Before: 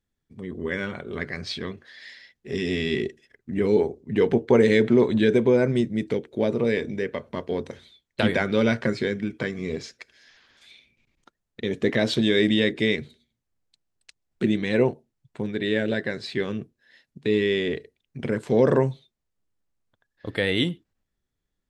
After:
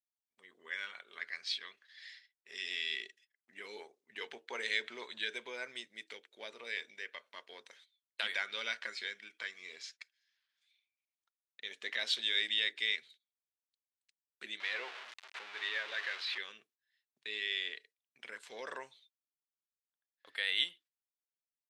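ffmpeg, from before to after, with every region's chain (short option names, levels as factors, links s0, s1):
-filter_complex "[0:a]asettb=1/sr,asplit=3[s0][s1][s2];[s0]atrim=end=14.604[s3];[s1]atrim=start=14.6:end=16.38,asetpts=PTS-STARTPTS,afade=t=in:d=0.004:c=qsin,afade=t=out:st=1.776:d=0.004:c=qsin,aeval=exprs='val(0)+0.5*0.0668*sgn(val(0))':c=same,highpass=390,lowpass=2900,acompressor=mode=upward:threshold=0.02:ratio=2.5:attack=3.2:release=140:knee=2.83:detection=peak[s4];[s2]atrim=start=16.376[s5];[s3][s4]acrossfade=d=0.004:c1=hsin:c2=qsin[s6];[s6][s5]acrossfade=d=0.004:c1=qsin:c2=hsin,agate=range=0.141:threshold=0.00501:ratio=16:detection=peak,highpass=1500,adynamicequalizer=threshold=0.00631:dfrequency=3500:dqfactor=1.1:tfrequency=3500:tqfactor=1.1:attack=5:release=100:ratio=0.375:range=2.5:mode=boostabove:tftype=bell,volume=0.398"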